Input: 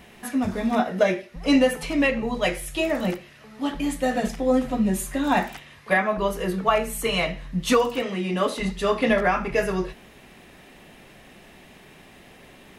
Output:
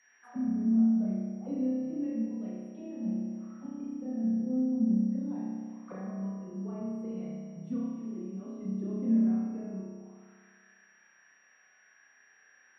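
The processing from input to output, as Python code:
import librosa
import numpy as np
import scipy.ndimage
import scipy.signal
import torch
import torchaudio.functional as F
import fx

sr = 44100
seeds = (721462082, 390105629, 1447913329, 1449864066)

y = fx.auto_wah(x, sr, base_hz=220.0, top_hz=1900.0, q=6.5, full_db=-22.5, direction='down')
y = y + 10.0 ** (-60.0 / 20.0) * np.sin(2.0 * np.pi * 5700.0 * np.arange(len(y)) / sr)
y = fx.rev_spring(y, sr, rt60_s=1.7, pass_ms=(31,), chirp_ms=20, drr_db=-5.5)
y = F.gain(torch.from_numpy(y), -8.5).numpy()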